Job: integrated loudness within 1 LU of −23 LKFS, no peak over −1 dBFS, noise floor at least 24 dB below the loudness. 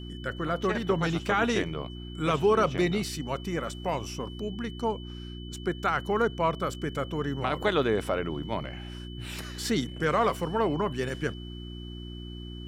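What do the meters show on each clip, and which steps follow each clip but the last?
mains hum 60 Hz; hum harmonics up to 360 Hz; level of the hum −37 dBFS; interfering tone 3,000 Hz; level of the tone −47 dBFS; integrated loudness −29.0 LKFS; sample peak −13.5 dBFS; target loudness −23.0 LKFS
→ hum removal 60 Hz, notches 6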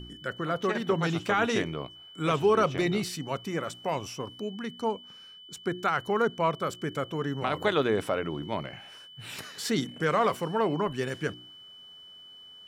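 mains hum none found; interfering tone 3,000 Hz; level of the tone −47 dBFS
→ notch filter 3,000 Hz, Q 30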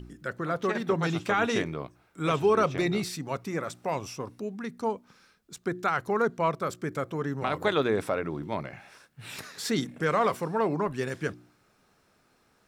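interfering tone none found; integrated loudness −29.5 LKFS; sample peak −13.5 dBFS; target loudness −23.0 LKFS
→ level +6.5 dB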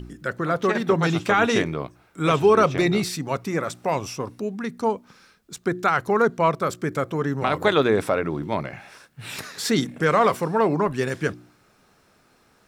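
integrated loudness −23.0 LKFS; sample peak −7.0 dBFS; background noise floor −60 dBFS

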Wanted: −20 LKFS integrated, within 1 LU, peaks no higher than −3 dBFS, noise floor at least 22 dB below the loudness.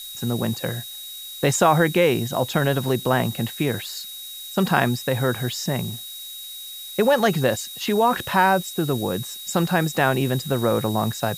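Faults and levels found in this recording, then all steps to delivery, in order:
interfering tone 3,800 Hz; level of the tone −36 dBFS; background noise floor −37 dBFS; target noise floor −44 dBFS; integrated loudness −22.0 LKFS; sample peak −3.5 dBFS; target loudness −20.0 LKFS
→ notch filter 3,800 Hz, Q 30
broadband denoise 7 dB, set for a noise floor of −37 dBFS
level +2 dB
brickwall limiter −3 dBFS

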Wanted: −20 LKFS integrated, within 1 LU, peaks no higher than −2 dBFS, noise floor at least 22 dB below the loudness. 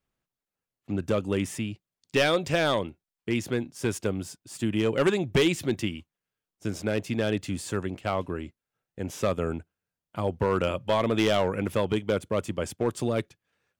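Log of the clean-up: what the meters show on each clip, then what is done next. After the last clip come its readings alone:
share of clipped samples 0.8%; peaks flattened at −16.5 dBFS; integrated loudness −28.0 LKFS; sample peak −16.5 dBFS; target loudness −20.0 LKFS
→ clipped peaks rebuilt −16.5 dBFS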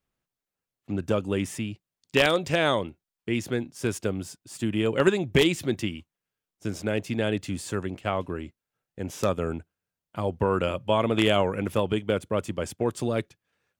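share of clipped samples 0.0%; integrated loudness −27.0 LKFS; sample peak −7.5 dBFS; target loudness −20.0 LKFS
→ level +7 dB
brickwall limiter −2 dBFS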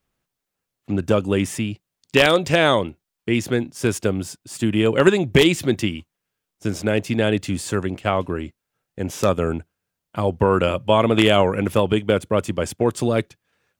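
integrated loudness −20.5 LKFS; sample peak −2.0 dBFS; background noise floor −83 dBFS

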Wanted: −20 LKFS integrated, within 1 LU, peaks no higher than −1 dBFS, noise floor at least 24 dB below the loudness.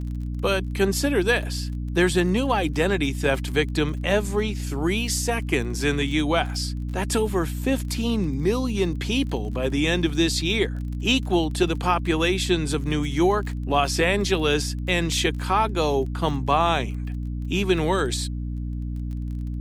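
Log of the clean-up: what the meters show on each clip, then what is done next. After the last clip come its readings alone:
crackle rate 27 per second; mains hum 60 Hz; hum harmonics up to 300 Hz; level of the hum −26 dBFS; integrated loudness −23.5 LKFS; sample peak −6.5 dBFS; target loudness −20.0 LKFS
→ click removal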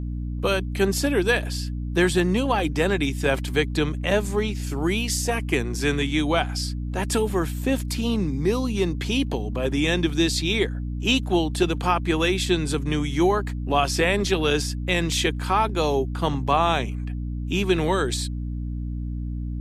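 crackle rate 0 per second; mains hum 60 Hz; hum harmonics up to 300 Hz; level of the hum −26 dBFS
→ mains-hum notches 60/120/180/240/300 Hz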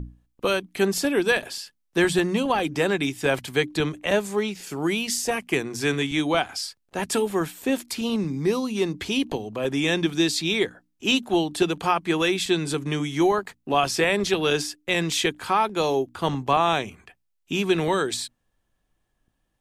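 mains hum none found; integrated loudness −24.0 LKFS; sample peak −7.0 dBFS; target loudness −20.0 LKFS
→ level +4 dB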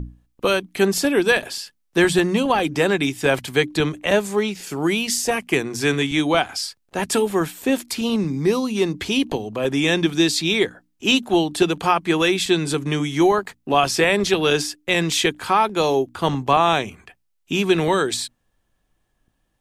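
integrated loudness −20.0 LKFS; sample peak −3.0 dBFS; background noise floor −69 dBFS

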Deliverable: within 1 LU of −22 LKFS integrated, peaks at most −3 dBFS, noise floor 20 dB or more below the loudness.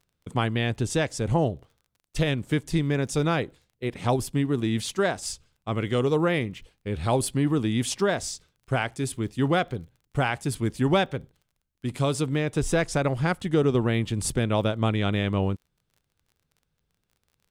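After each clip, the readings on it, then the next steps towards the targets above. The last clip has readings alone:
crackle rate 27 per second; integrated loudness −26.5 LKFS; sample peak −9.5 dBFS; target loudness −22.0 LKFS
→ click removal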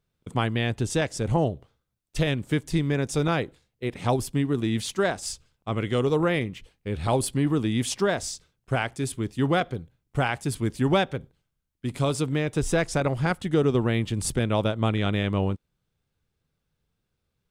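crackle rate 0 per second; integrated loudness −26.5 LKFS; sample peak −9.5 dBFS; target loudness −22.0 LKFS
→ level +4.5 dB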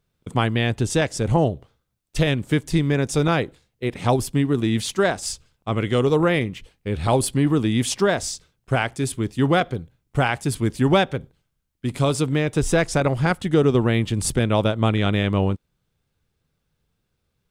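integrated loudness −22.0 LKFS; sample peak −5.0 dBFS; background noise floor −75 dBFS

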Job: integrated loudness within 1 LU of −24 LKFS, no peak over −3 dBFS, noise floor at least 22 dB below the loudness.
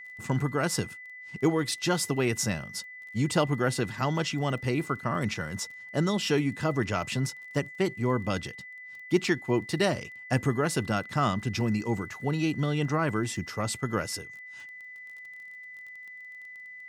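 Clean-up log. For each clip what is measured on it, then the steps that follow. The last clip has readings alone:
crackle rate 22 per second; interfering tone 2,000 Hz; level of the tone −42 dBFS; integrated loudness −29.0 LKFS; sample peak −11.0 dBFS; target loudness −24.0 LKFS
→ click removal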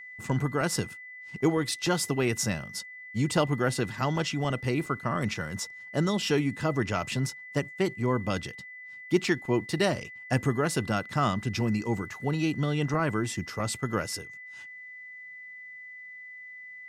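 crackle rate 0 per second; interfering tone 2,000 Hz; level of the tone −42 dBFS
→ notch filter 2,000 Hz, Q 30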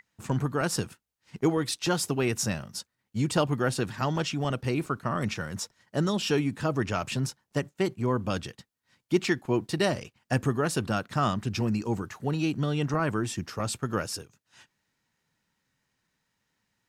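interfering tone none found; integrated loudness −29.0 LKFS; sample peak −11.5 dBFS; target loudness −24.0 LKFS
→ level +5 dB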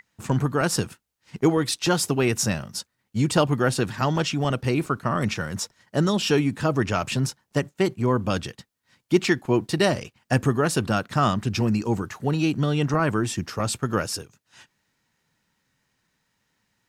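integrated loudness −24.0 LKFS; sample peak −6.5 dBFS; background noise floor −77 dBFS

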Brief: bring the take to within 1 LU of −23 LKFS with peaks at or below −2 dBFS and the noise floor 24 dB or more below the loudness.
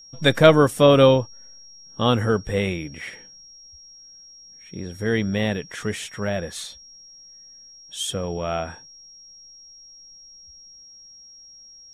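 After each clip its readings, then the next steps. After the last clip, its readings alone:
interfering tone 5,600 Hz; level of the tone −44 dBFS; integrated loudness −20.5 LKFS; sample peak −2.0 dBFS; target loudness −23.0 LKFS
→ notch filter 5,600 Hz, Q 30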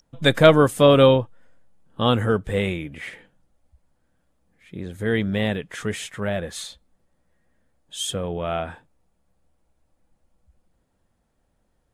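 interfering tone none found; integrated loudness −20.5 LKFS; sample peak −2.0 dBFS; target loudness −23.0 LKFS
→ level −2.5 dB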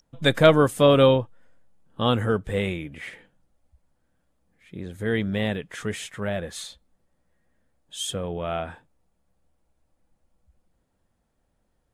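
integrated loudness −23.0 LKFS; sample peak −4.5 dBFS; background noise floor −73 dBFS

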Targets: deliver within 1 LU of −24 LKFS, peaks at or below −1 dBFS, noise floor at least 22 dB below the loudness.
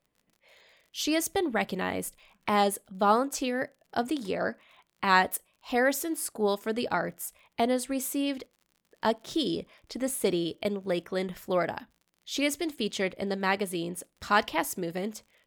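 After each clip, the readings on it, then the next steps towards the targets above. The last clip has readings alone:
crackle rate 42 per second; integrated loudness −29.5 LKFS; sample peak −7.5 dBFS; target loudness −24.0 LKFS
→ click removal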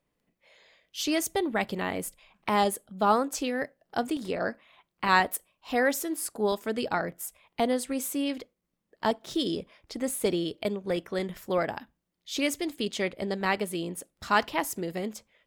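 crackle rate 0.84 per second; integrated loudness −29.5 LKFS; sample peak −7.5 dBFS; target loudness −24.0 LKFS
→ level +5.5 dB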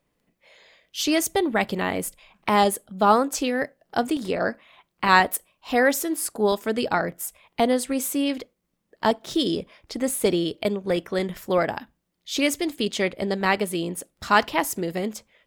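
integrated loudness −24.0 LKFS; sample peak −2.0 dBFS; background noise floor −76 dBFS

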